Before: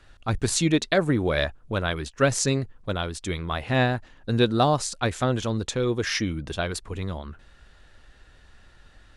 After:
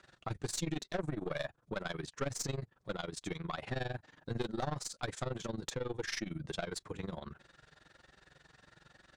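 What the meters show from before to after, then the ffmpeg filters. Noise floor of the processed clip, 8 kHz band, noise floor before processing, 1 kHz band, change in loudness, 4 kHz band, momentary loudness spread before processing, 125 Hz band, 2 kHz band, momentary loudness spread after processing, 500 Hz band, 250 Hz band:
-73 dBFS, -13.0 dB, -54 dBFS, -14.5 dB, -14.5 dB, -14.0 dB, 10 LU, -14.5 dB, -14.5 dB, 6 LU, -14.5 dB, -15.0 dB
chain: -af "highpass=120,equalizer=f=150:t=q:w=4:g=3,equalizer=f=230:t=q:w=4:g=-4,equalizer=f=2.8k:t=q:w=4:g=-4,lowpass=f=9.1k:w=0.5412,lowpass=f=9.1k:w=1.3066,aeval=exprs='(tanh(7.94*val(0)+0.45)-tanh(0.45))/7.94':c=same,flanger=delay=5.2:depth=1.5:regen=-43:speed=1.1:shape=sinusoidal,tremolo=f=22:d=0.889,acompressor=threshold=-44dB:ratio=2.5,volume=6dB"

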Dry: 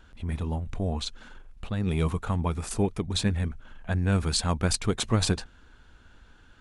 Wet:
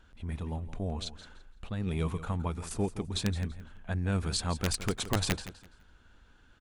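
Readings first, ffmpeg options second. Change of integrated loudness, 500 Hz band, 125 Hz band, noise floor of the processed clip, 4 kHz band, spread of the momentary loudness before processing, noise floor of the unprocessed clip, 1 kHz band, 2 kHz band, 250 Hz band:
-5.5 dB, -5.5 dB, -5.5 dB, -60 dBFS, -5.0 dB, 9 LU, -55 dBFS, -5.0 dB, -3.5 dB, -5.5 dB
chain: -af "aeval=exprs='(mod(4.73*val(0)+1,2)-1)/4.73':c=same,aecho=1:1:168|336|504:0.2|0.0479|0.0115,volume=-5.5dB"

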